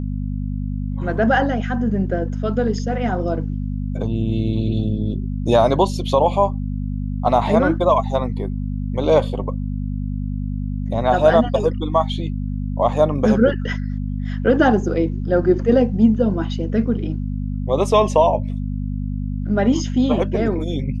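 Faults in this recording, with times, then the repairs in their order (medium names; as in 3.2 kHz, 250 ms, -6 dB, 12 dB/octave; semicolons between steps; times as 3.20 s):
hum 50 Hz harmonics 5 -24 dBFS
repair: de-hum 50 Hz, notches 5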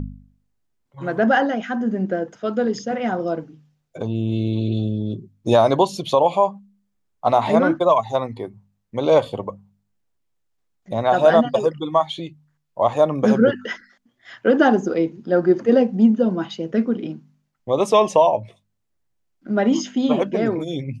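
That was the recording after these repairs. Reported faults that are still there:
nothing left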